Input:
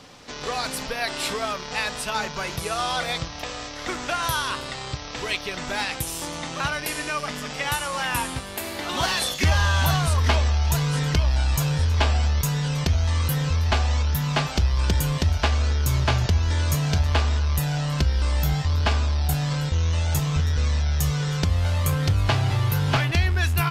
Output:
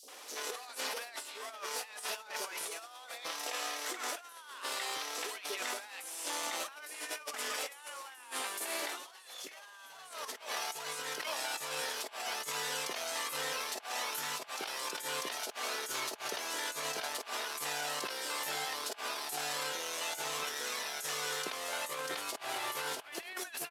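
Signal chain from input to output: CVSD 64 kbps; HPF 390 Hz 24 dB/oct; high shelf 8300 Hz +10 dB; three bands offset in time highs, lows, mids 30/80 ms, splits 570/4700 Hz; negative-ratio compressor -34 dBFS, ratio -0.5; gain -5.5 dB

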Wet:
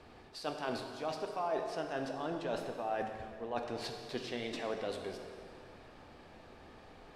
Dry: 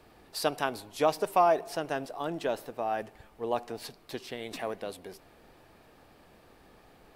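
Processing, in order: LPF 6100 Hz 12 dB/oct; reverse; compressor 10:1, threshold -35 dBFS, peak gain reduction 17 dB; reverse; plate-style reverb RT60 2.2 s, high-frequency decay 0.85×, DRR 3.5 dB; gain +1 dB

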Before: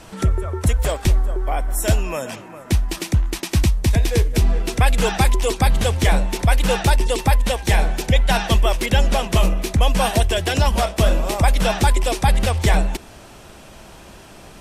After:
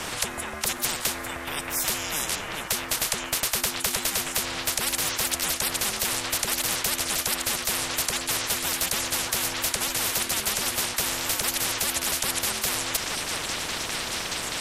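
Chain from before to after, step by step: delay with a stepping band-pass 0.627 s, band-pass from 1200 Hz, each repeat 0.7 oct, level -6 dB; ring modulator 300 Hz; spectral compressor 10:1

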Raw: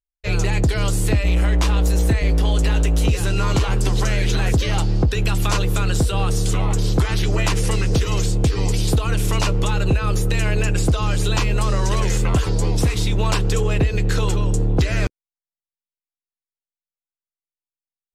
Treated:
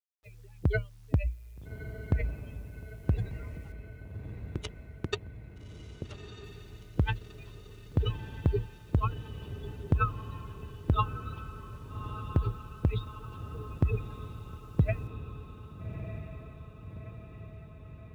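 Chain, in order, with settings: spectral contrast raised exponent 2.8; synth low-pass 3500 Hz, resonance Q 8.4; gate with hold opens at -11 dBFS; requantised 12-bit, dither none; HPF 430 Hz 6 dB/oct; 3.72–6.44 power-law curve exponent 3; diffused feedback echo 1.25 s, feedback 62%, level -10 dB; gain +7 dB

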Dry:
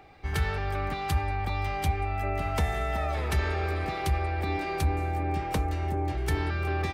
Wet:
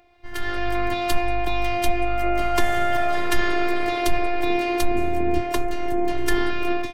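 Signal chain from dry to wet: 4.95–5.43 bell 170 Hz +15 dB 0.84 oct; AGC gain up to 14.5 dB; robotiser 351 Hz; gain -2.5 dB

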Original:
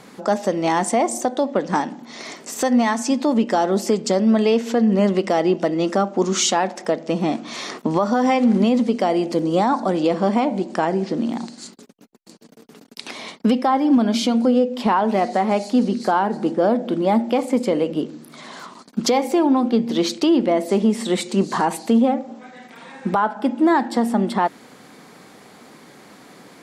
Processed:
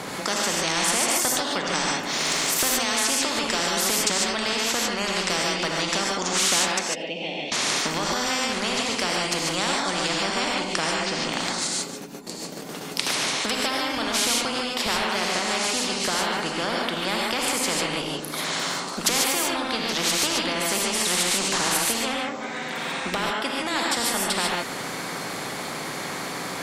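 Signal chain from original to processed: 1.9–2.44 sample leveller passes 1; 6.79–7.52 double band-pass 1200 Hz, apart 2.4 oct; non-linear reverb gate 0.17 s rising, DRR -2 dB; spectral compressor 4:1; gain -3.5 dB

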